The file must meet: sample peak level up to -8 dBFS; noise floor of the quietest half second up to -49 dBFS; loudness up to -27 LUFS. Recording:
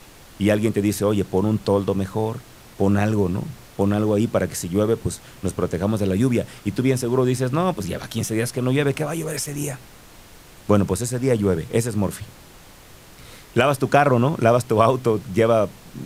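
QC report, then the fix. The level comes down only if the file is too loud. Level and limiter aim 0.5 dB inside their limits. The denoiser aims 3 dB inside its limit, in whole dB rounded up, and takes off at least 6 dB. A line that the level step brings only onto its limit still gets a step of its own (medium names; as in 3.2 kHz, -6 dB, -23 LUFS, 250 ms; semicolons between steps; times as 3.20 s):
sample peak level -2.0 dBFS: fail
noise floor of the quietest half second -45 dBFS: fail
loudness -21.5 LUFS: fail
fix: trim -6 dB; peak limiter -8.5 dBFS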